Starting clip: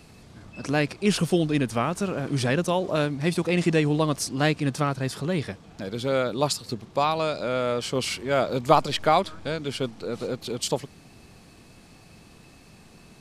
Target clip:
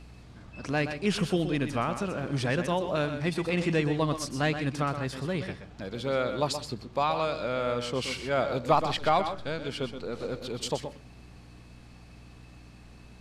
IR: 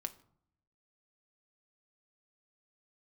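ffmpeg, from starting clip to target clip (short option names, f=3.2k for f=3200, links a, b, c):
-filter_complex "[0:a]aeval=exprs='val(0)+0.00562*(sin(2*PI*60*n/s)+sin(2*PI*2*60*n/s)/2+sin(2*PI*3*60*n/s)/3+sin(2*PI*4*60*n/s)/4+sin(2*PI*5*60*n/s)/5)':c=same,lowshelf=f=170:g=11.5,asplit=2[a][b];[b]highpass=f=720:p=1,volume=10dB,asoftclip=type=tanh:threshold=-2dB[c];[a][c]amix=inputs=2:normalize=0,lowpass=f=3.5k:p=1,volume=-6dB,asplit=2[d][e];[1:a]atrim=start_sample=2205,asetrate=66150,aresample=44100,adelay=124[f];[e][f]afir=irnorm=-1:irlink=0,volume=-3.5dB[g];[d][g]amix=inputs=2:normalize=0,volume=-7.5dB"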